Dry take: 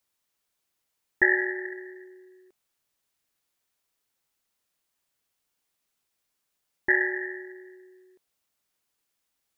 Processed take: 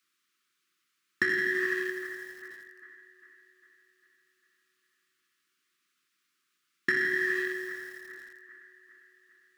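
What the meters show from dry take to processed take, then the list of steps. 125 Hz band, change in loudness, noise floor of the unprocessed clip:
n/a, -4.0 dB, -80 dBFS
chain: in parallel at -9 dB: bit-crush 6-bit; on the sum: overdrive pedal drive 22 dB, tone 1900 Hz, clips at -3 dBFS; elliptic band-stop 370–1200 Hz, stop band 40 dB; on a send: band-limited delay 0.401 s, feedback 54%, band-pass 840 Hz, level -14 dB; on the sum: dynamic EQ 850 Hz, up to +4 dB, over -31 dBFS, Q 0.85; compressor 16:1, threshold -20 dBFS, peak gain reduction 11.5 dB; HPF 110 Hz 24 dB/oct; bell 650 Hz +8.5 dB 0.21 oct; lo-fi delay 83 ms, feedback 80%, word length 7-bit, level -10.5 dB; gain -4 dB

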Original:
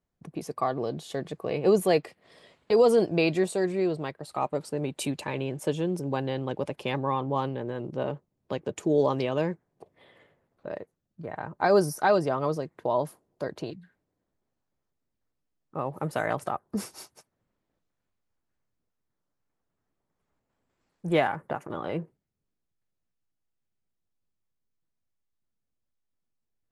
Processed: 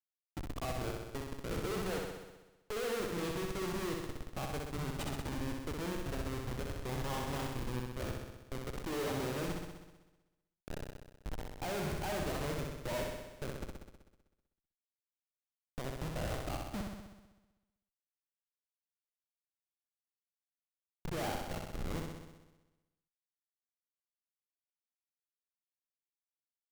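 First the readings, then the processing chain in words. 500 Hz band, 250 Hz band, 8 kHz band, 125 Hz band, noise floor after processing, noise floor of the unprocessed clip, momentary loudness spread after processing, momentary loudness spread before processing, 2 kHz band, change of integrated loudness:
-14.5 dB, -10.5 dB, -4.5 dB, -6.5 dB, under -85 dBFS, -82 dBFS, 12 LU, 17 LU, -8.5 dB, -12.0 dB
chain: Schmitt trigger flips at -28.5 dBFS; flutter echo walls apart 10.9 m, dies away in 1.1 s; gain -7.5 dB

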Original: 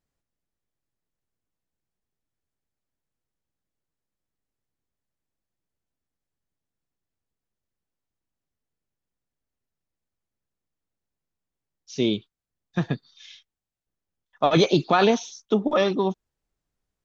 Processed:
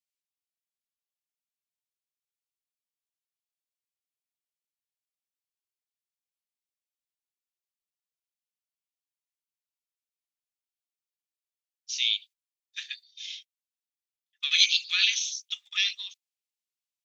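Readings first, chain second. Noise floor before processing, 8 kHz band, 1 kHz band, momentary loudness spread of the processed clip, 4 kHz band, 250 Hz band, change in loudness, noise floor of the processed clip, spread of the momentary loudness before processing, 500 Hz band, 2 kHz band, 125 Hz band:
under -85 dBFS, n/a, under -25 dB, 19 LU, +8.0 dB, under -40 dB, -1.5 dB, under -85 dBFS, 13 LU, under -40 dB, +2.0 dB, under -40 dB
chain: steep high-pass 2300 Hz 36 dB/oct; gate -55 dBFS, range -12 dB; gain +8 dB

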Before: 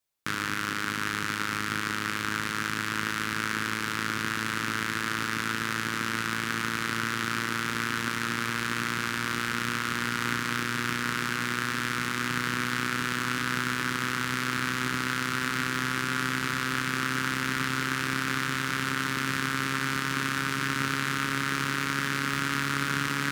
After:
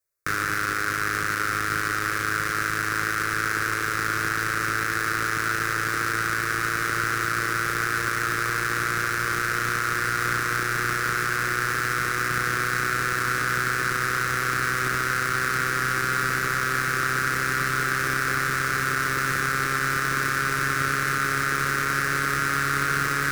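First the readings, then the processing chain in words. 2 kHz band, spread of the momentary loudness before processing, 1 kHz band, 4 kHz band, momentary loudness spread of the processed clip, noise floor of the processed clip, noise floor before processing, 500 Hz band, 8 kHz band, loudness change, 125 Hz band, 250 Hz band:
+5.5 dB, 2 LU, +6.0 dB, -1.0 dB, 1 LU, -27 dBFS, -32 dBFS, +6.0 dB, +4.5 dB, +4.5 dB, +3.5 dB, -2.5 dB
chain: fixed phaser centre 850 Hz, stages 6; in parallel at -4.5 dB: companded quantiser 2-bit; on the sum: gain +2 dB

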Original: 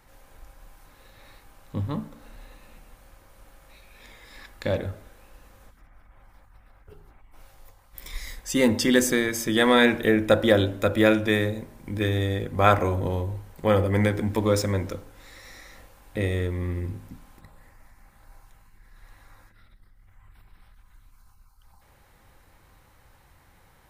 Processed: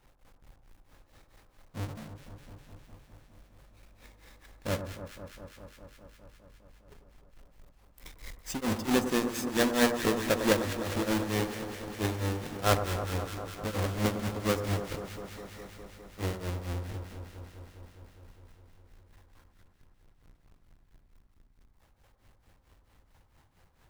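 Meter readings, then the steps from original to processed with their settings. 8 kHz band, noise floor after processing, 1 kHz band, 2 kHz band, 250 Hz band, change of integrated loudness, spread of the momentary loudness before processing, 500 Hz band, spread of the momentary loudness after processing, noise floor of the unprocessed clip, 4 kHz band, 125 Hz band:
-4.5 dB, -65 dBFS, -6.5 dB, -8.5 dB, -7.0 dB, -7.5 dB, 17 LU, -8.5 dB, 21 LU, -58 dBFS, -6.0 dB, -7.0 dB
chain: half-waves squared off; tremolo triangle 4.5 Hz, depth 100%; echo with dull and thin repeats by turns 0.102 s, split 1400 Hz, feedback 88%, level -9 dB; gain -8.5 dB

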